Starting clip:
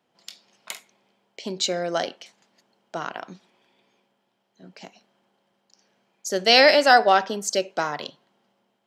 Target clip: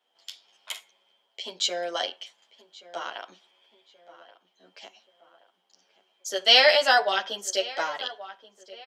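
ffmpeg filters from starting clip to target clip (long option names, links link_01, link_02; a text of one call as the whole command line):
ffmpeg -i in.wav -filter_complex "[0:a]highpass=530,equalizer=frequency=3200:width_type=o:width=0.2:gain=13,asplit=2[link_01][link_02];[link_02]adelay=1128,lowpass=frequency=2400:poles=1,volume=-17dB,asplit=2[link_03][link_04];[link_04]adelay=1128,lowpass=frequency=2400:poles=1,volume=0.46,asplit=2[link_05][link_06];[link_06]adelay=1128,lowpass=frequency=2400:poles=1,volume=0.46,asplit=2[link_07][link_08];[link_08]adelay=1128,lowpass=frequency=2400:poles=1,volume=0.46[link_09];[link_03][link_05][link_07][link_09]amix=inputs=4:normalize=0[link_10];[link_01][link_10]amix=inputs=2:normalize=0,asplit=2[link_11][link_12];[link_12]adelay=10.1,afreqshift=0.78[link_13];[link_11][link_13]amix=inputs=2:normalize=1" out.wav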